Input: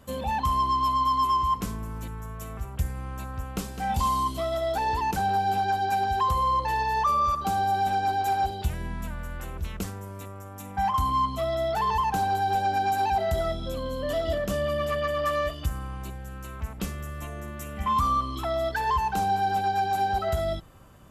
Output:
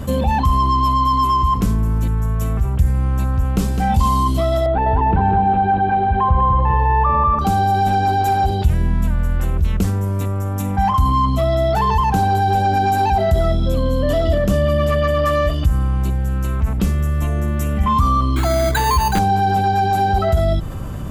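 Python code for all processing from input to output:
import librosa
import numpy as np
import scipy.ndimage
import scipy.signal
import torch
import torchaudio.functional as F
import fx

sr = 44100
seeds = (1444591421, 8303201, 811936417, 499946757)

y = fx.chain(x, sr, fx.bessel_lowpass(hz=1800.0, order=8),
    fx.echo_feedback(ms=200, feedback_pct=38, wet_db=-5.5), at=(4.66, 7.39))
y = fx.chain(y, sr, fx.high_shelf(hz=4700.0, db=11.5),
    fx.resample_bad(factor=8, down='none', up='hold'), at=(18.36, 19.19))
y = fx.low_shelf(y, sr, hz=340.0, db=12.0)
y = fx.env_flatten(y, sr, amount_pct=50)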